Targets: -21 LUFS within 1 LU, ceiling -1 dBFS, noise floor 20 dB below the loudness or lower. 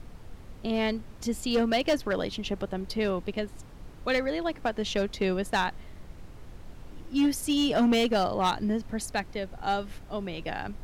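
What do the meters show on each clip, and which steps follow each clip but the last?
clipped samples 1.1%; clipping level -19.0 dBFS; noise floor -47 dBFS; noise floor target -49 dBFS; loudness -29.0 LUFS; peak level -19.0 dBFS; loudness target -21.0 LUFS
-> clip repair -19 dBFS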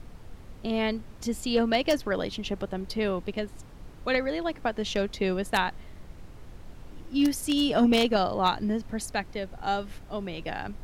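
clipped samples 0.0%; noise floor -47 dBFS; noise floor target -48 dBFS
-> noise print and reduce 6 dB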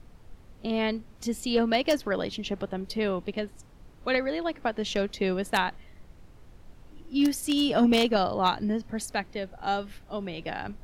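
noise floor -52 dBFS; loudness -28.0 LUFS; peak level -10.0 dBFS; loudness target -21.0 LUFS
-> trim +7 dB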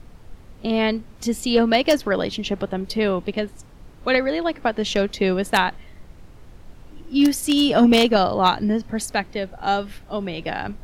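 loudness -21.0 LUFS; peak level -3.0 dBFS; noise floor -45 dBFS

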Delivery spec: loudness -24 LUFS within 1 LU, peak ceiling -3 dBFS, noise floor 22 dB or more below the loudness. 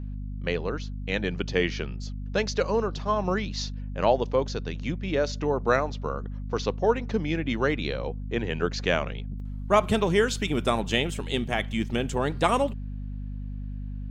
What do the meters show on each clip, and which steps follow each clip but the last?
hum 50 Hz; highest harmonic 250 Hz; hum level -31 dBFS; loudness -27.5 LUFS; peak level -7.0 dBFS; loudness target -24.0 LUFS
-> de-hum 50 Hz, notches 5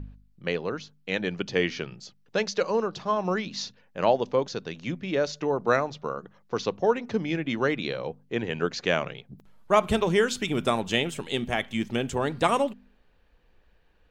hum not found; loudness -27.5 LUFS; peak level -7.5 dBFS; loudness target -24.0 LUFS
-> trim +3.5 dB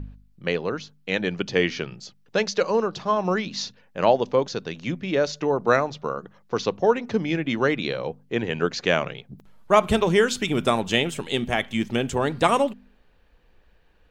loudness -24.0 LUFS; peak level -4.0 dBFS; noise floor -58 dBFS

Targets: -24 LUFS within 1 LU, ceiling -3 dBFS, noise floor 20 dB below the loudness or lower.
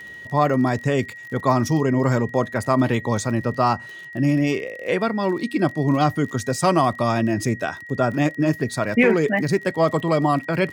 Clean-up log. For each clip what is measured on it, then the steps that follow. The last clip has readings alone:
tick rate 36 per s; steady tone 1.9 kHz; tone level -36 dBFS; loudness -21.5 LUFS; peak level -4.0 dBFS; loudness target -24.0 LUFS
-> de-click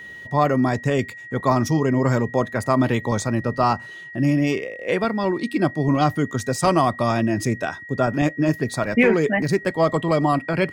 tick rate 1.4 per s; steady tone 1.9 kHz; tone level -36 dBFS
-> band-stop 1.9 kHz, Q 30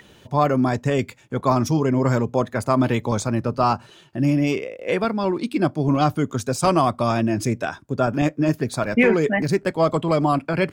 steady tone not found; loudness -21.5 LUFS; peak level -5.0 dBFS; loudness target -24.0 LUFS
-> trim -2.5 dB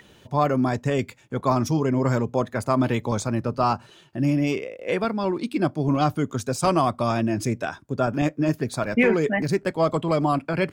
loudness -24.0 LUFS; peak level -7.5 dBFS; noise floor -53 dBFS

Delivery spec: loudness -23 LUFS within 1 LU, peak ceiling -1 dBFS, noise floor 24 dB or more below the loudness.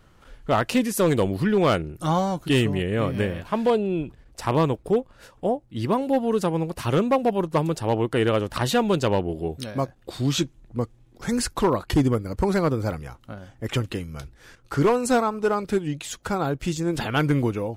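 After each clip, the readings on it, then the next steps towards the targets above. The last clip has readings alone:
clipped samples 0.7%; clipping level -13.0 dBFS; loudness -24.0 LUFS; peak level -13.0 dBFS; loudness target -23.0 LUFS
-> clip repair -13 dBFS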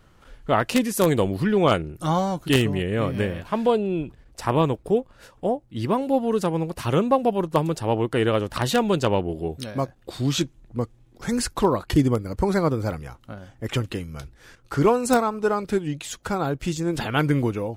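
clipped samples 0.0%; loudness -24.0 LUFS; peak level -4.0 dBFS; loudness target -23.0 LUFS
-> trim +1 dB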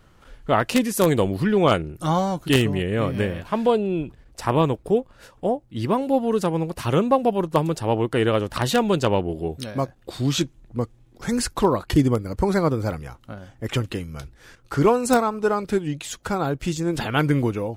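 loudness -23.0 LUFS; peak level -3.0 dBFS; noise floor -54 dBFS

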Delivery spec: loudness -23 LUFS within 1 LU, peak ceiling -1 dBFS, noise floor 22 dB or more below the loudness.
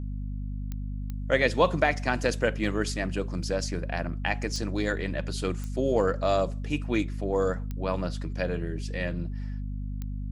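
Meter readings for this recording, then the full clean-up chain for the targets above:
clicks found 6; hum 50 Hz; highest harmonic 250 Hz; hum level -30 dBFS; loudness -29.0 LUFS; peak level -7.5 dBFS; loudness target -23.0 LUFS
-> de-click; de-hum 50 Hz, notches 5; trim +6 dB

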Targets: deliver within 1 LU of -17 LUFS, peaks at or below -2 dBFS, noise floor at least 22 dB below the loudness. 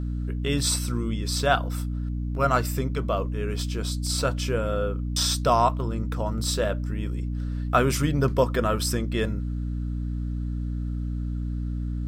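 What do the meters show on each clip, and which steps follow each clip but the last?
hum 60 Hz; highest harmonic 300 Hz; hum level -26 dBFS; loudness -26.5 LUFS; peak level -6.5 dBFS; loudness target -17.0 LUFS
-> hum notches 60/120/180/240/300 Hz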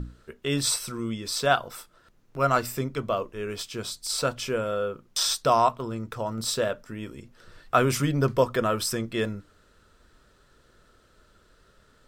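hum not found; loudness -26.5 LUFS; peak level -7.5 dBFS; loudness target -17.0 LUFS
-> trim +9.5 dB; peak limiter -2 dBFS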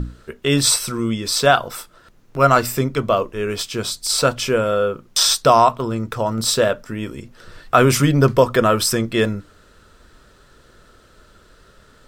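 loudness -17.5 LUFS; peak level -2.0 dBFS; noise floor -51 dBFS

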